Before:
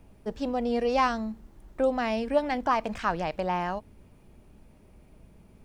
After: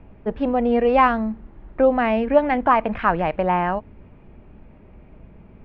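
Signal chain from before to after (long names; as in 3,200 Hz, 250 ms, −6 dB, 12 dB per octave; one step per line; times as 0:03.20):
low-pass filter 2,600 Hz 24 dB per octave
level +8.5 dB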